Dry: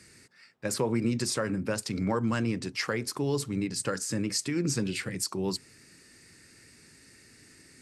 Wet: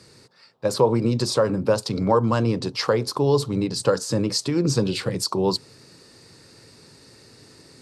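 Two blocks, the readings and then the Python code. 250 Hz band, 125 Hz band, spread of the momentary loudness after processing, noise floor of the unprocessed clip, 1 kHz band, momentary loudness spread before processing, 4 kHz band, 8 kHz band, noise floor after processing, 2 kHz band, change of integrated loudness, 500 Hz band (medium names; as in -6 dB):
+6.0 dB, +8.5 dB, 5 LU, -57 dBFS, +11.0 dB, 4 LU, +7.5 dB, +1.5 dB, -52 dBFS, +1.0 dB, +8.0 dB, +11.5 dB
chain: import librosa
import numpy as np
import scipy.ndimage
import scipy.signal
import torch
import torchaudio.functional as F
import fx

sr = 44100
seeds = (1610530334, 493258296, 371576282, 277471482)

p1 = fx.graphic_eq(x, sr, hz=(125, 500, 1000, 2000, 4000, 8000), db=(8, 10, 11, -8, 10, -3))
p2 = fx.rider(p1, sr, range_db=10, speed_s=0.5)
p3 = p1 + (p2 * librosa.db_to_amplitude(-2.5))
y = p3 * librosa.db_to_amplitude(-3.5)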